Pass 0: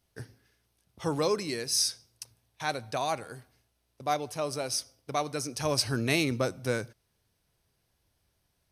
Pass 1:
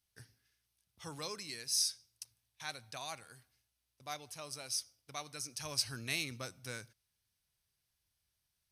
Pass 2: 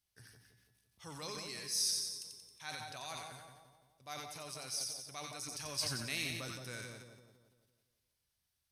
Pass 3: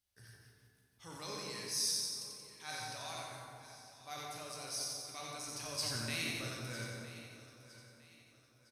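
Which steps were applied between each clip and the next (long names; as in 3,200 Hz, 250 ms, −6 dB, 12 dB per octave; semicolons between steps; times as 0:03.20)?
guitar amp tone stack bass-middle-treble 5-5-5; level +1 dB
echo with a time of its own for lows and highs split 1,000 Hz, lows 169 ms, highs 90 ms, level −6 dB; transient designer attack −2 dB, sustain +8 dB; tuned comb filter 190 Hz, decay 1.4 s, mix 70%; level +7.5 dB
repeating echo 958 ms, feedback 37%, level −16 dB; dense smooth reverb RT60 2 s, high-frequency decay 0.5×, DRR −0.5 dB; level −2.5 dB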